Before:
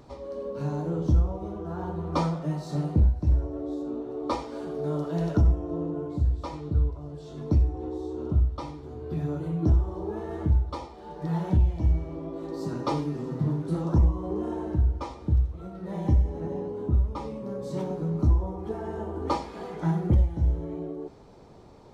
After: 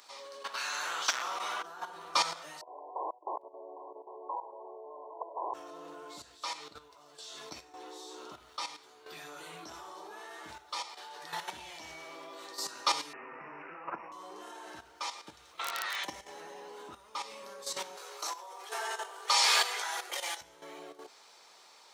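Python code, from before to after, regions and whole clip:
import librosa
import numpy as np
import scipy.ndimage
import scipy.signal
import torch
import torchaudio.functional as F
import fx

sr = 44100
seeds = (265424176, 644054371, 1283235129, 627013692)

y = fx.chain(x, sr, fx.clip_hard(threshold_db=-18.5),
    fx.high_shelf(hz=3300.0, db=-10.5),
    fx.spectral_comp(ratio=4.0), at=(0.44, 1.63))
y = fx.chain(y, sr, fx.overflow_wrap(gain_db=18.5),
    fx.brickwall_bandpass(low_hz=310.0, high_hz=1100.0),
    fx.echo_single(ms=805, db=-15.5), at=(2.61, 5.54))
y = fx.chain(y, sr, fx.peak_eq(hz=81.0, db=-10.0, octaves=1.6),
    fx.resample_bad(factor=8, down='none', up='filtered'),
    fx.band_squash(depth_pct=100), at=(13.13, 14.12))
y = fx.lowpass(y, sr, hz=4300.0, slope=12, at=(15.58, 16.03), fade=0.02)
y = fx.dmg_crackle(y, sr, seeds[0], per_s=37.0, level_db=-45.0, at=(15.58, 16.03), fade=0.02)
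y = fx.spectral_comp(y, sr, ratio=10.0, at=(15.58, 16.03), fade=0.02)
y = fx.chain(y, sr, fx.steep_highpass(hz=380.0, slope=48),
    fx.high_shelf(hz=2100.0, db=7.0),
    fx.sustainer(db_per_s=21.0), at=(17.97, 20.41))
y = scipy.signal.sosfilt(scipy.signal.butter(2, 1300.0, 'highpass', fs=sr, output='sos'), y)
y = fx.high_shelf(y, sr, hz=2100.0, db=10.0)
y = fx.level_steps(y, sr, step_db=11)
y = F.gain(torch.from_numpy(y), 8.0).numpy()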